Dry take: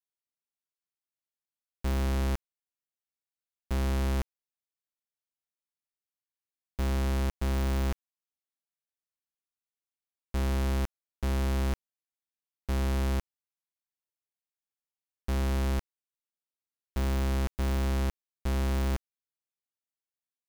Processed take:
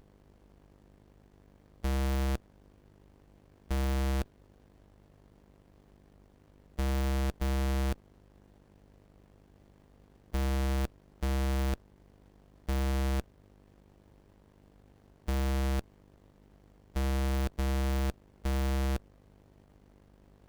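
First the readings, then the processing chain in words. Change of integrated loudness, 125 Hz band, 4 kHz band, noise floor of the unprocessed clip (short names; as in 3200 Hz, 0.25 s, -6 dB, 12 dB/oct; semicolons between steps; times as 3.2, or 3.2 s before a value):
-2.0 dB, -2.0 dB, -1.0 dB, under -85 dBFS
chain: per-bin compression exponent 0.4; buzz 50 Hz, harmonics 15, -59 dBFS -3 dB/oct; running maximum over 33 samples; gain -2 dB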